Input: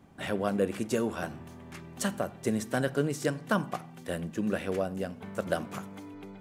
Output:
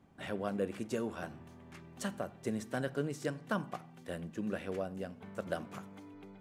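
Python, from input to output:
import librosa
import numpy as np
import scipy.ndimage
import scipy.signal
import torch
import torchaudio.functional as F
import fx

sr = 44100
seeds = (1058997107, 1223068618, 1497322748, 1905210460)

y = fx.high_shelf(x, sr, hz=7600.0, db=-6.0)
y = F.gain(torch.from_numpy(y), -7.0).numpy()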